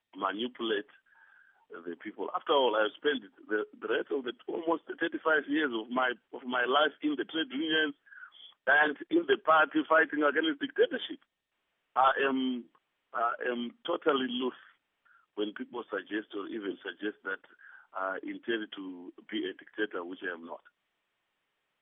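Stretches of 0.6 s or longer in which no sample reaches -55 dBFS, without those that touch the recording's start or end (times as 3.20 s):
11.23–11.96 s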